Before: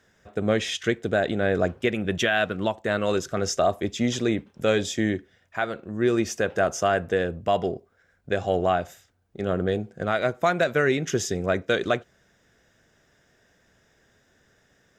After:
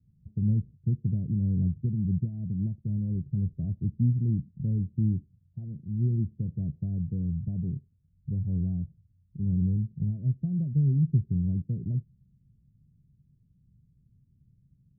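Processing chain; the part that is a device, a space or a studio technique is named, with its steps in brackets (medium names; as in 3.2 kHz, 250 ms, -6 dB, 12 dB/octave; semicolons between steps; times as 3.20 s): the neighbour's flat through the wall (low-pass 170 Hz 24 dB/octave; peaking EQ 140 Hz +6.5 dB 0.71 oct); trim +5 dB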